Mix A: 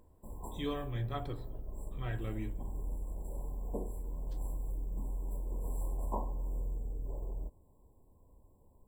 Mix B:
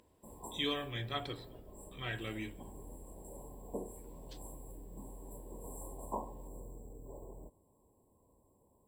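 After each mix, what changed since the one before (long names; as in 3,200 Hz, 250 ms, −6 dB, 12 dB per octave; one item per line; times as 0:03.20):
master: add meter weighting curve D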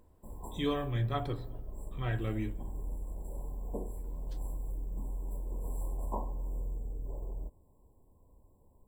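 speech +5.0 dB
master: remove meter weighting curve D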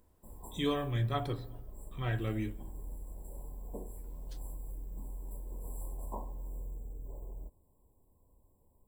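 background −5.0 dB
master: add high-shelf EQ 6,200 Hz +9.5 dB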